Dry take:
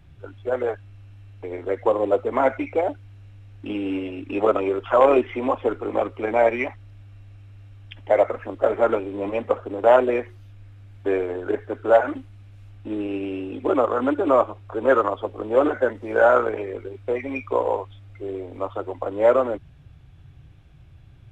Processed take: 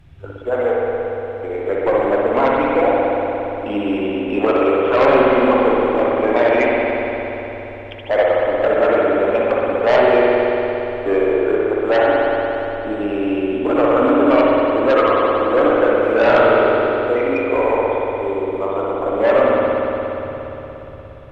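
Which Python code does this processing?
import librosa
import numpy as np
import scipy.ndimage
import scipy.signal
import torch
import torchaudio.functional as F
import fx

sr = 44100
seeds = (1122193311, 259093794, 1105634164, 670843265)

p1 = fx.fold_sine(x, sr, drive_db=10, ceiling_db=-4.5)
p2 = x + (p1 * librosa.db_to_amplitude(-10.0))
p3 = fx.rev_spring(p2, sr, rt60_s=3.8, pass_ms=(58,), chirp_ms=40, drr_db=-4.5)
y = p3 * librosa.db_to_amplitude(-4.5)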